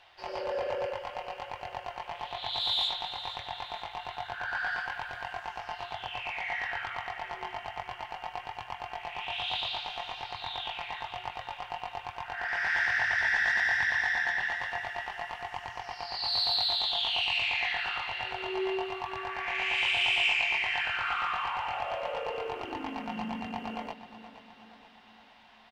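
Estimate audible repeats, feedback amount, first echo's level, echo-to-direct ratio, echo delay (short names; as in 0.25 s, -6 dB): 4, 53%, -13.5 dB, -12.0 dB, 0.472 s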